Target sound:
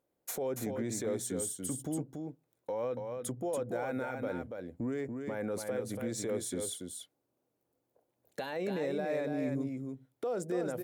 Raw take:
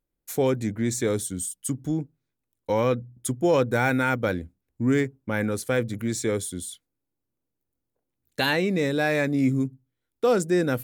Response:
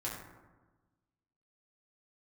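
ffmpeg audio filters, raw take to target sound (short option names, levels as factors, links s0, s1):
-filter_complex "[0:a]highpass=100,equalizer=f=620:t=o:w=1.6:g=12.5,acompressor=threshold=0.02:ratio=2,alimiter=level_in=1.58:limit=0.0631:level=0:latency=1:release=75,volume=0.631,asplit=2[s0][s1];[s1]aecho=0:1:284:0.562[s2];[s0][s2]amix=inputs=2:normalize=0"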